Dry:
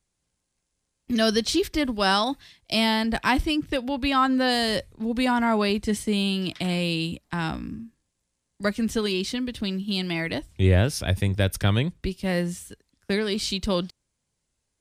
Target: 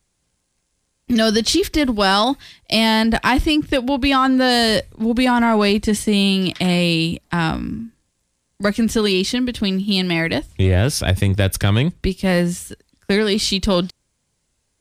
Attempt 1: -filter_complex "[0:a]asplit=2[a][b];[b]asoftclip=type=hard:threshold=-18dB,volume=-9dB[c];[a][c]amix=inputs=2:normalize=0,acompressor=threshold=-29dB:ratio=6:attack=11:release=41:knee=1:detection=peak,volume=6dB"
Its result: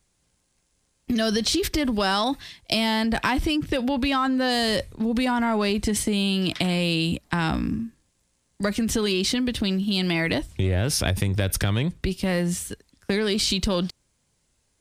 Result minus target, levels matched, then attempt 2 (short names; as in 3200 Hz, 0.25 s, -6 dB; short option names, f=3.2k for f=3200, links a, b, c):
compressor: peak gain reduction +7.5 dB
-filter_complex "[0:a]asplit=2[a][b];[b]asoftclip=type=hard:threshold=-18dB,volume=-9dB[c];[a][c]amix=inputs=2:normalize=0,acompressor=threshold=-20dB:ratio=6:attack=11:release=41:knee=1:detection=peak,volume=6dB"